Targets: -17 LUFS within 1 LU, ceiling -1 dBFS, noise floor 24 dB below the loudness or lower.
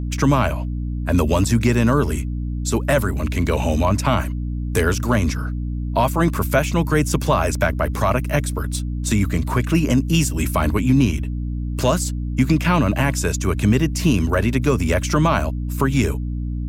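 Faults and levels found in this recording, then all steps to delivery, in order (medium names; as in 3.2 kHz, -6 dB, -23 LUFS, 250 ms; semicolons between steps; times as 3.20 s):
hum 60 Hz; highest harmonic 300 Hz; hum level -22 dBFS; loudness -20.0 LUFS; peak level -5.5 dBFS; loudness target -17.0 LUFS
-> de-hum 60 Hz, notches 5; trim +3 dB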